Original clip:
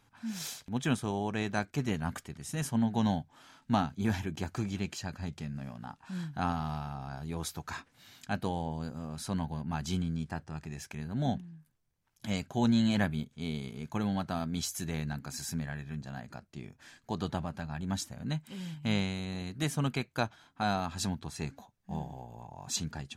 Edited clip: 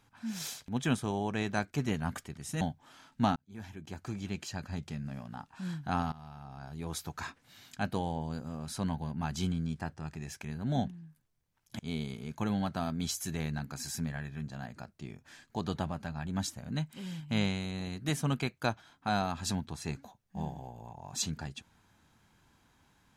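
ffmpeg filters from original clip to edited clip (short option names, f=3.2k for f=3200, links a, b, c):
-filter_complex "[0:a]asplit=5[a][b][c][d][e];[a]atrim=end=2.612[f];[b]atrim=start=3.108:end=3.86,asetpts=PTS-STARTPTS,afade=t=out:st=0.748:d=0.004:c=hsin[g];[c]atrim=start=3.86:end=6.62,asetpts=PTS-STARTPTS,afade=t=in:d=1.29,afade=t=out:st=2.756:d=0.004:c=hsin:silence=0.133352[h];[d]atrim=start=6.62:end=12.292,asetpts=PTS-STARTPTS,afade=t=in:d=0.96:silence=0.133352[i];[e]atrim=start=13.328[j];[g][h][i]concat=n=3:v=0:a=1[k];[f][k]acrossfade=d=0.004:c1=hsin:c2=hsin[l];[l][j]acrossfade=d=0.004:c1=hsin:c2=hsin"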